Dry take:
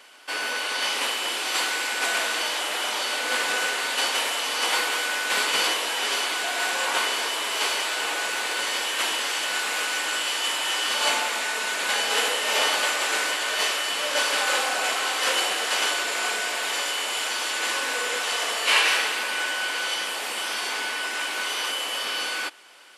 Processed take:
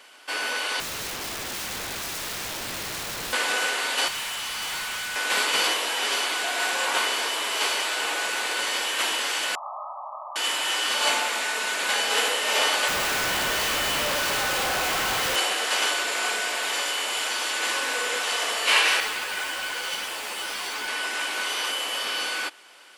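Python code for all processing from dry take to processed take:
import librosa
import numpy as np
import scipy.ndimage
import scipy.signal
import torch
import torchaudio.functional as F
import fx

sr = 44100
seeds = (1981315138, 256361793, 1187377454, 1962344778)

y = fx.chain(x, sr, fx.tilt_eq(slope=-5.0),
    fx.overflow_wrap(gain_db=27.5), at=(0.8, 3.33))
y = fx.chain(y, sr, fx.highpass(hz=920.0, slope=12),
    fx.clip_hard(threshold_db=-29.0), at=(4.08, 5.16))
y = fx.chain(y, sr, fx.brickwall_bandpass(low_hz=570.0, high_hz=1300.0),
    fx.doubler(ms=31.0, db=-13.5), at=(9.55, 10.36))
y = fx.chain(y, sr, fx.high_shelf(hz=7700.0, db=-2.5),
    fx.schmitt(flips_db=-34.0), at=(12.88, 15.36))
y = fx.chain(y, sr, fx.quant_companded(bits=4),
    fx.ensemble(), at=(19.0, 20.88))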